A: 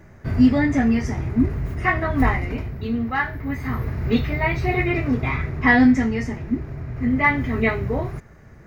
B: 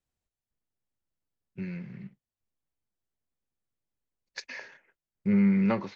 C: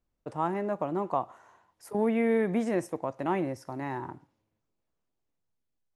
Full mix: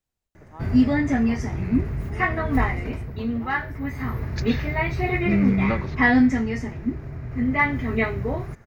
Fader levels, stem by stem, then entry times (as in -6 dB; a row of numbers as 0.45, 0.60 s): -2.5, +2.0, -14.5 dB; 0.35, 0.00, 0.15 s